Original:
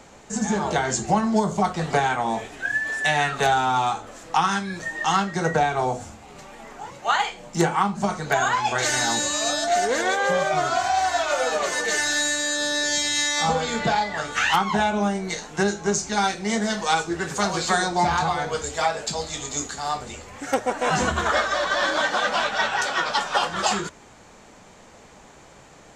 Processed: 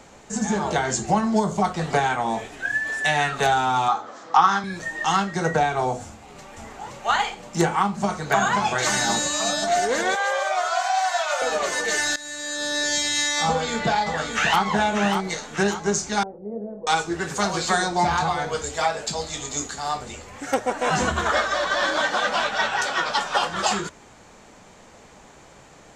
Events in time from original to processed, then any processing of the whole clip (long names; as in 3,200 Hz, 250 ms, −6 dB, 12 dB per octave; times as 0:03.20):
0:03.88–0:04.64: loudspeaker in its box 210–6,000 Hz, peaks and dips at 800 Hz +4 dB, 1,200 Hz +8 dB, 2,600 Hz −7 dB
0:06.04–0:06.82: delay throw 520 ms, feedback 70%, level −1.5 dB
0:07.80–0:08.21: delay throw 530 ms, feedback 60%, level −4 dB
0:10.15–0:11.42: high-pass filter 580 Hz 24 dB per octave
0:12.16–0:12.82: fade in, from −19 dB
0:13.47–0:14.61: delay throw 590 ms, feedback 45%, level −6.5 dB
0:16.23–0:16.87: transistor ladder low-pass 580 Hz, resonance 60%